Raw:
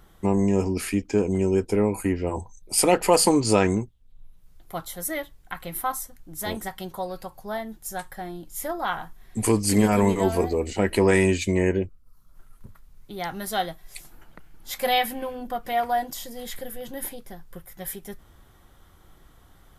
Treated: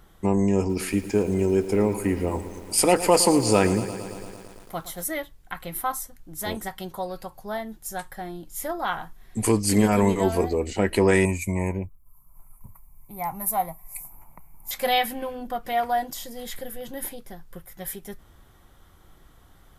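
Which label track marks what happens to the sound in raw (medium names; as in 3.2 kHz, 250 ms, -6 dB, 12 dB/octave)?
0.580000	5.070000	bit-crushed delay 113 ms, feedback 80%, word length 7-bit, level -14 dB
11.250000	14.710000	FFT filter 160 Hz 0 dB, 410 Hz -11 dB, 1 kHz +8 dB, 1.6 kHz -18 dB, 2.3 kHz +1 dB, 3.2 kHz -24 dB, 12 kHz +12 dB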